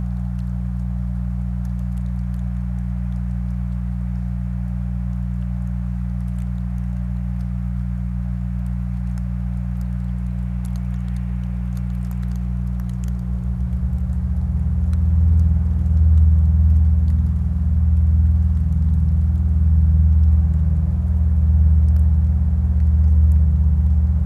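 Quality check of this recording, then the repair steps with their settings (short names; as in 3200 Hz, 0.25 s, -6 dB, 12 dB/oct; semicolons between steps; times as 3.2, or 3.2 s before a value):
hum 60 Hz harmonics 3 -23 dBFS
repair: de-hum 60 Hz, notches 3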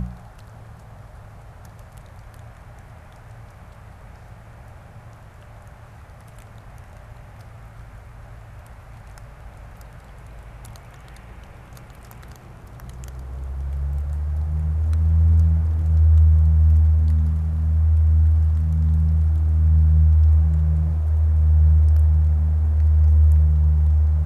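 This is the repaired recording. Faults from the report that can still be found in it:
none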